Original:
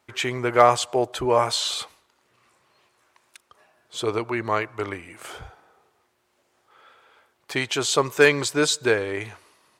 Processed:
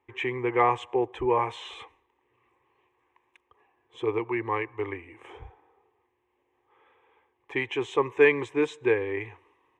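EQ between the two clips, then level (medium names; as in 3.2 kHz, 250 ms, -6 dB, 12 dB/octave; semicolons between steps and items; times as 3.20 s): dynamic bell 2.1 kHz, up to +4 dB, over -38 dBFS, Q 1.1; tape spacing loss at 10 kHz 29 dB; static phaser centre 940 Hz, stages 8; 0.0 dB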